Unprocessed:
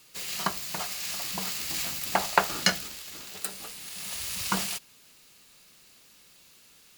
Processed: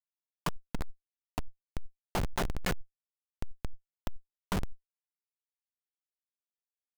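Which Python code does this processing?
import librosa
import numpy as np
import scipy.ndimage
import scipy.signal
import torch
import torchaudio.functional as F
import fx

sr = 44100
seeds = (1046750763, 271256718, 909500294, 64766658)

y = scipy.signal.sosfilt(scipy.signal.butter(2, 2700.0, 'lowpass', fs=sr, output='sos'), x)
y = fx.echo_stepped(y, sr, ms=423, hz=200.0, octaves=0.7, feedback_pct=70, wet_db=-7.5)
y = fx.quant_dither(y, sr, seeds[0], bits=8, dither='none')
y = fx.schmitt(y, sr, flips_db=-27.5)
y = fx.env_flatten(y, sr, amount_pct=100)
y = y * librosa.db_to_amplitude(6.0)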